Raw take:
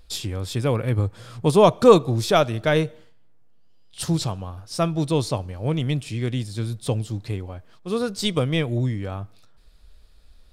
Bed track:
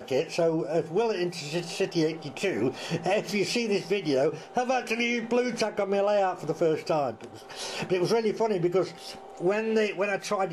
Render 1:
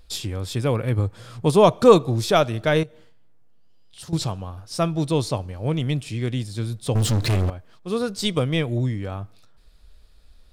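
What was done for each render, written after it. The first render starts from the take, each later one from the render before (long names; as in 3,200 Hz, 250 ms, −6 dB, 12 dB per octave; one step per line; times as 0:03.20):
0:02.83–0:04.13: downward compressor 2 to 1, threshold −45 dBFS
0:06.95–0:07.50: leveller curve on the samples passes 5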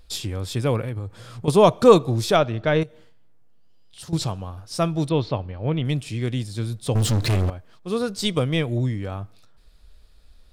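0:00.83–0:01.48: downward compressor, threshold −26 dBFS
0:02.36–0:02.82: high-frequency loss of the air 150 metres
0:05.09–0:05.85: low-pass filter 3,800 Hz 24 dB per octave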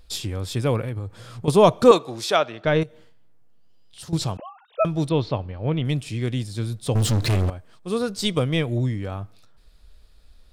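0:01.91–0:02.65: meter weighting curve A
0:04.37–0:04.85: three sine waves on the formant tracks
0:07.48–0:07.98: parametric band 8,500 Hz +7 dB 0.29 octaves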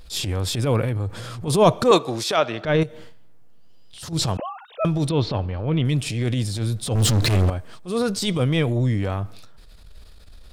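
in parallel at +2.5 dB: downward compressor, threshold −29 dBFS, peak gain reduction 20 dB
on the sum: transient designer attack −11 dB, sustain +4 dB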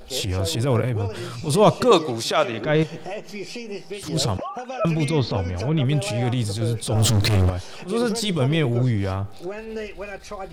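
mix in bed track −6.5 dB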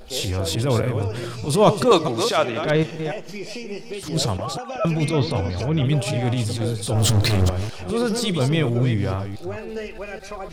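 delay that plays each chunk backwards 208 ms, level −8.5 dB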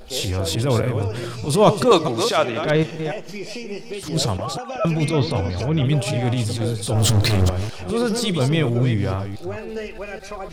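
level +1 dB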